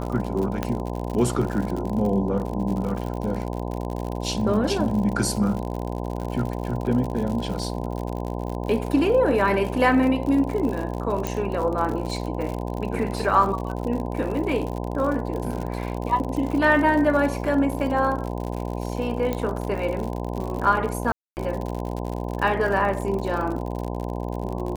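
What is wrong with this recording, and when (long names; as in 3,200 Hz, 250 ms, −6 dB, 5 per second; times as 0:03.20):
mains buzz 60 Hz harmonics 17 −29 dBFS
surface crackle 72 per second −29 dBFS
0:00.63: click −11 dBFS
0:11.27: click −11 dBFS
0:19.33: click −13 dBFS
0:21.12–0:21.37: drop-out 249 ms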